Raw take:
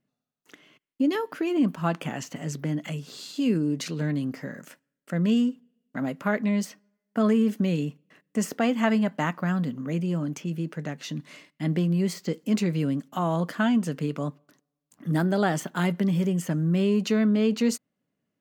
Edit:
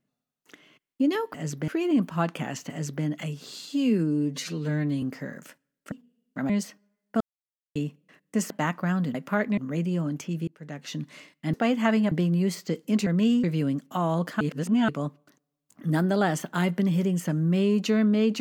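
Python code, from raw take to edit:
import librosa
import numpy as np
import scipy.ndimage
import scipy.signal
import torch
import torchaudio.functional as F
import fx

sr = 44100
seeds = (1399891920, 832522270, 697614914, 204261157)

y = fx.edit(x, sr, fx.duplicate(start_s=2.36, length_s=0.34, to_s=1.34),
    fx.stretch_span(start_s=3.35, length_s=0.89, factor=1.5),
    fx.move(start_s=5.13, length_s=0.37, to_s=12.65),
    fx.move(start_s=6.08, length_s=0.43, to_s=9.74),
    fx.silence(start_s=7.22, length_s=0.55),
    fx.move(start_s=8.52, length_s=0.58, to_s=11.7),
    fx.fade_in_span(start_s=10.64, length_s=0.43),
    fx.reverse_span(start_s=13.62, length_s=0.48), tone=tone)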